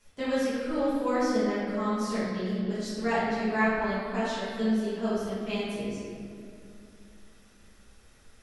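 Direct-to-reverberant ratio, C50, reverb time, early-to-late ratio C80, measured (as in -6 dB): -12.0 dB, -3.0 dB, 2.5 s, -0.5 dB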